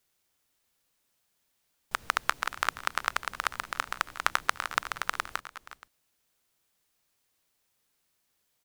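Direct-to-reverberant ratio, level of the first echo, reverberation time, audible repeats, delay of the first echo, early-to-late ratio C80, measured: no reverb audible, −16.5 dB, no reverb audible, 2, 359 ms, no reverb audible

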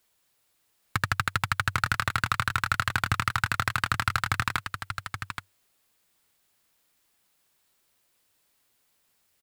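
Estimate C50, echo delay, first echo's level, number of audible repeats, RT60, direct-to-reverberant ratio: no reverb audible, 825 ms, −8.0 dB, 1, no reverb audible, no reverb audible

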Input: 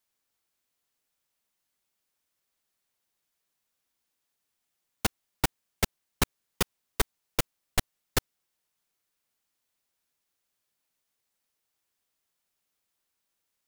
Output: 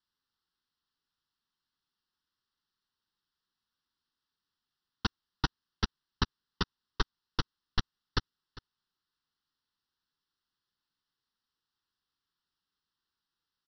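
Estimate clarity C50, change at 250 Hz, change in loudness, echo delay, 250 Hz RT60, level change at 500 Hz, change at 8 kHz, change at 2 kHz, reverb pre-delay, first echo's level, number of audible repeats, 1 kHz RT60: no reverb audible, −3.0 dB, −4.5 dB, 401 ms, no reverb audible, −8.5 dB, −17.5 dB, −4.5 dB, no reverb audible, −19.0 dB, 1, no reverb audible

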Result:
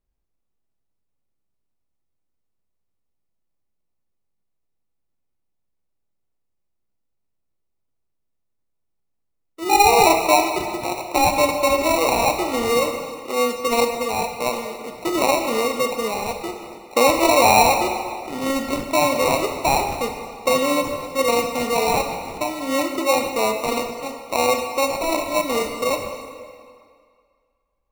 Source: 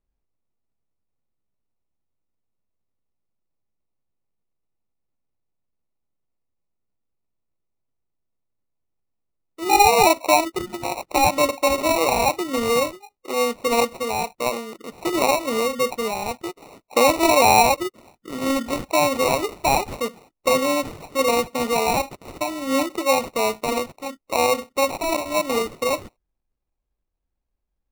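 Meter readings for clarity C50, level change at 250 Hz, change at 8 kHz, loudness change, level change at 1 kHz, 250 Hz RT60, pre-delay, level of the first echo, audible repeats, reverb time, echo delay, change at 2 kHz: 6.0 dB, +1.0 dB, +1.0 dB, +1.0 dB, +1.0 dB, 1.9 s, 25 ms, no echo audible, no echo audible, 2.1 s, no echo audible, +1.0 dB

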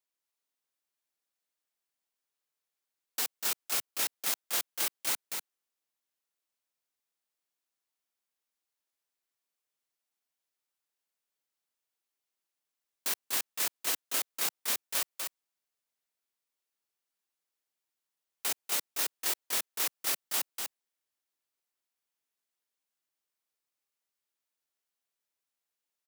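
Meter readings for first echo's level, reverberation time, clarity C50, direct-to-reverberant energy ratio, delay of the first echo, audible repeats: −5.0 dB, no reverb audible, no reverb audible, no reverb audible, 245 ms, 1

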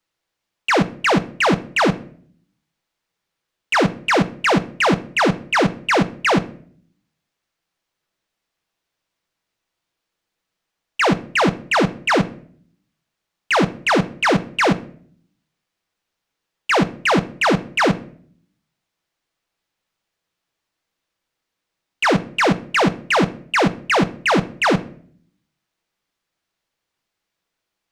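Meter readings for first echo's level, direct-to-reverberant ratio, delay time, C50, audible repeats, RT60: no echo audible, 11.0 dB, no echo audible, 18.0 dB, no echo audible, 0.55 s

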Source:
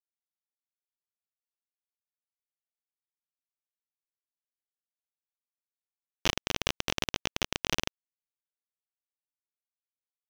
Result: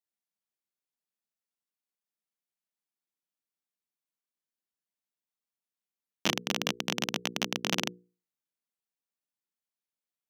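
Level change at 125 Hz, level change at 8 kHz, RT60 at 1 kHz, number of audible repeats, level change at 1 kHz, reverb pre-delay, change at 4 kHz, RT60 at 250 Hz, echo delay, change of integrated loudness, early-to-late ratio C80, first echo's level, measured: −1.0 dB, 0.0 dB, no reverb audible, no echo audible, +0.5 dB, no reverb audible, 0.0 dB, no reverb audible, no echo audible, +0.5 dB, no reverb audible, no echo audible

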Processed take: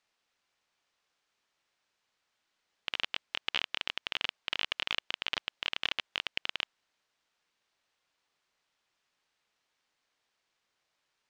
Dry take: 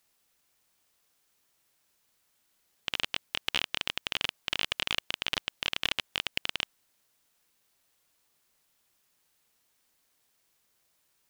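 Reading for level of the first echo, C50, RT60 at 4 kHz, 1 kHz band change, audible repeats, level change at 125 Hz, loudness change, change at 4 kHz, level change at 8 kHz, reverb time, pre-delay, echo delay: no echo audible, no reverb audible, no reverb audible, −2.0 dB, no echo audible, −9.0 dB, −2.5 dB, −3.0 dB, −10.0 dB, no reverb audible, no reverb audible, no echo audible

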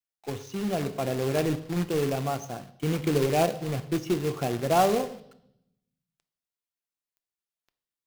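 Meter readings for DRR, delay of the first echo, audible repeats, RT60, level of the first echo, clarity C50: 11.0 dB, no echo audible, no echo audible, 0.80 s, no echo audible, 16.0 dB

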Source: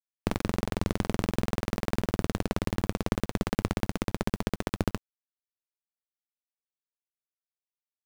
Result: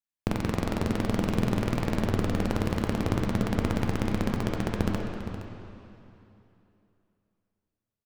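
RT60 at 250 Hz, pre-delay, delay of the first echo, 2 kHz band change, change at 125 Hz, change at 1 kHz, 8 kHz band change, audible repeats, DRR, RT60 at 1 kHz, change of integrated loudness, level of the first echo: 2.9 s, 8 ms, 467 ms, +1.0 dB, +3.5 dB, +1.0 dB, −1.5 dB, 1, 0.5 dB, 2.9 s, +2.0 dB, −13.0 dB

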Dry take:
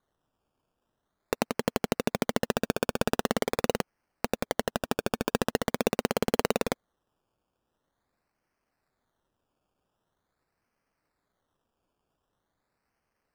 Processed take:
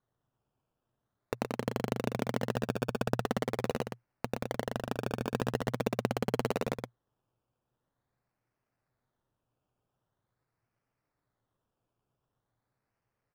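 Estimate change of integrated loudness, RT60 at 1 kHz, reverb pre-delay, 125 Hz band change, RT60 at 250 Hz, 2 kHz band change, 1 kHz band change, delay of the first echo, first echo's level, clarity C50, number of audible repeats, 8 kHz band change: −4.5 dB, no reverb audible, no reverb audible, +1.5 dB, no reverb audible, −6.0 dB, −4.5 dB, 120 ms, −5.0 dB, no reverb audible, 1, −10.0 dB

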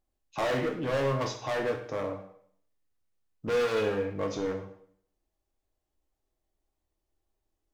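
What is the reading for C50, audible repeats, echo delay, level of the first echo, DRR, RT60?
8.5 dB, no echo audible, no echo audible, no echo audible, 3.0 dB, 0.60 s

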